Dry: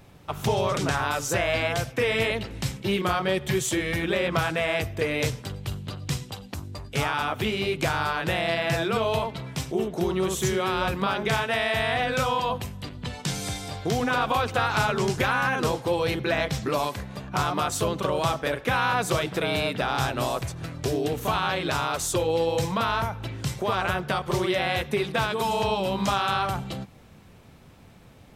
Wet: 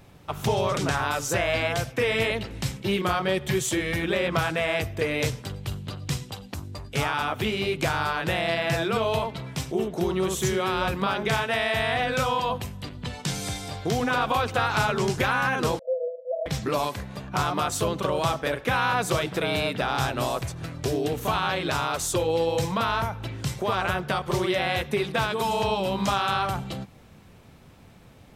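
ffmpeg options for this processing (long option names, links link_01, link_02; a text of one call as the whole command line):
ffmpeg -i in.wav -filter_complex "[0:a]asettb=1/sr,asplit=3[link_01][link_02][link_03];[link_01]atrim=end=15.794[link_04];[link_02]atrim=start=15.79:end=16.46,asetpts=PTS-STARTPTS,afade=type=in:duration=0.004:curve=qsin,afade=type=out:start_time=0.666:duration=0.004:curve=qsin,asuperpass=centerf=570:order=12:qfactor=3.1[link_05];[link_03]atrim=start=16.456[link_06];[link_04][link_05]acrossfade=duration=0.004:curve1=hsin:curve2=qsin[link_07];[link_07][link_06]acrossfade=duration=0.004:curve1=qsin:curve2=hsin" out.wav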